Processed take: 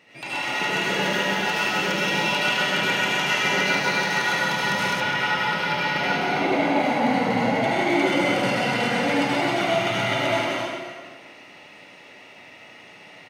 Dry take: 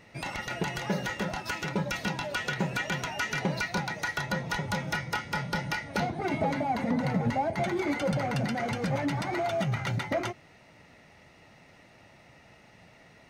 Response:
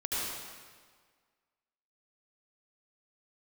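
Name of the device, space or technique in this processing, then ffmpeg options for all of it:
stadium PA: -filter_complex "[0:a]highpass=220,equalizer=f=2800:t=o:w=0.76:g=7,aecho=1:1:177.8|265.3:0.631|0.501[s0];[1:a]atrim=start_sample=2205[s1];[s0][s1]afir=irnorm=-1:irlink=0,asettb=1/sr,asplit=3[s2][s3][s4];[s2]atrim=end=5.004[s5];[s3]atrim=start=5:end=6.8,asetpts=PTS-STARTPTS,afade=t=in:d=0.004:c=qsin,afade=t=out:st=1.796:d=0.004:c=qsin,acrossover=split=4500[s6][s7];[s7]acompressor=threshold=0.00501:ratio=4:attack=1:release=60[s8];[s6][s8]amix=inputs=2:normalize=0[s9];[s4]atrim=start=6.796[s10];[s5][s9]acrossfade=d=0.004:c1=hsin:c2=qsin[s11];[s11][s10]acrossfade=d=0.004:c1=qsin:c2=hsin"

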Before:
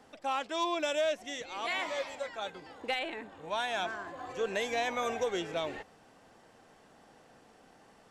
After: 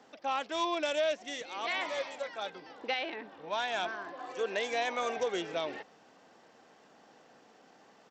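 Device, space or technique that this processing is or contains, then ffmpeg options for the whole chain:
Bluetooth headset: -filter_complex "[0:a]asettb=1/sr,asplit=3[s0][s1][s2];[s0]atrim=end=4.124[s3];[s1]atrim=start=4.12:end=5.17,asetpts=PTS-STARTPTS,afade=t=in:d=0.004:c=qsin,afade=t=out:st=1.046:d=0.004:c=qsin,highpass=220[s4];[s2]atrim=start=5.166[s5];[s3][s4]acrossfade=d=0.004:c1=hsin:c2=qsin[s6];[s6][s5]acrossfade=d=0.004:c1=qsin:c2=hsin,highpass=190,aresample=16000,aresample=44100" -ar 32000 -c:a sbc -b:a 64k

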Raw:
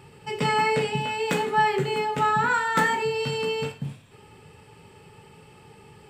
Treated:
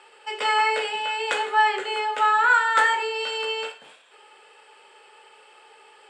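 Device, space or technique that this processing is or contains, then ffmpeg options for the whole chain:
phone speaker on a table: -af "highpass=f=490:w=0.5412,highpass=f=490:w=1.3066,equalizer=f=1500:t=q:w=4:g=6,equalizer=f=3200:t=q:w=4:g=4,equalizer=f=5800:t=q:w=4:g=-5,lowpass=f=9000:w=0.5412,lowpass=f=9000:w=1.3066,volume=1.19"

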